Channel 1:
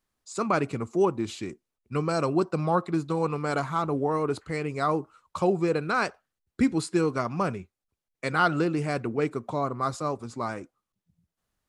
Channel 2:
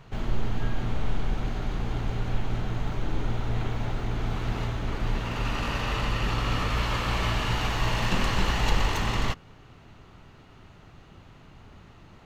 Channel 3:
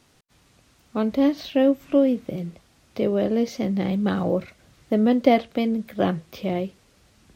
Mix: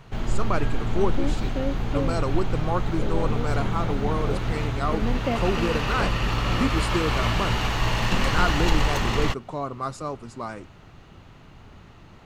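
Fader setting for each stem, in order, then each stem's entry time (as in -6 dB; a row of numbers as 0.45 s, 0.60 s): -2.0 dB, +2.5 dB, -11.0 dB; 0.00 s, 0.00 s, 0.00 s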